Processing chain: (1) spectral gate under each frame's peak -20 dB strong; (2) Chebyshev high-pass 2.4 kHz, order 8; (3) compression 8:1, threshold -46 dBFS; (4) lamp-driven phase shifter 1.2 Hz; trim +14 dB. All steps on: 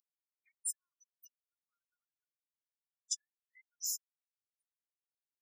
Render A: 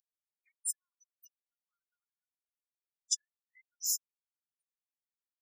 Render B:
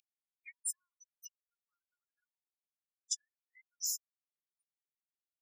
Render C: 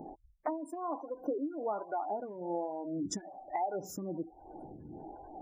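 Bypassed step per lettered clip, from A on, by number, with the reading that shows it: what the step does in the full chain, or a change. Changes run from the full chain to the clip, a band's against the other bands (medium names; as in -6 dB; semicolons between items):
3, mean gain reduction 2.5 dB; 4, momentary loudness spread change +15 LU; 2, crest factor change -9.0 dB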